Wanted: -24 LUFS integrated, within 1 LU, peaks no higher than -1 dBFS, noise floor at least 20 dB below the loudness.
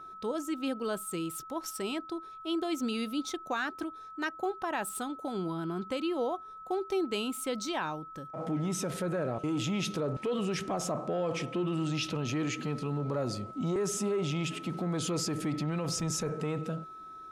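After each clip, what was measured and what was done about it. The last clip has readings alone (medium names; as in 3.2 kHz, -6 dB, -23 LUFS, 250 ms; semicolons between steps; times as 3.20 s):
steady tone 1.3 kHz; tone level -44 dBFS; loudness -33.5 LUFS; peak level -21.5 dBFS; loudness target -24.0 LUFS
-> band-stop 1.3 kHz, Q 30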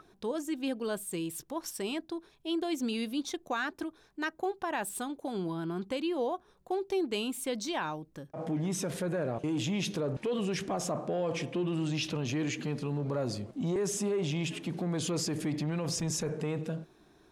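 steady tone not found; loudness -34.0 LUFS; peak level -22.0 dBFS; loudness target -24.0 LUFS
-> trim +10 dB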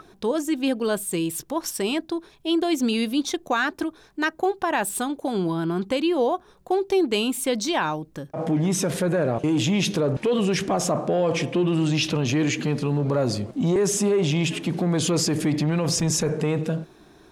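loudness -24.0 LUFS; peak level -12.0 dBFS; noise floor -53 dBFS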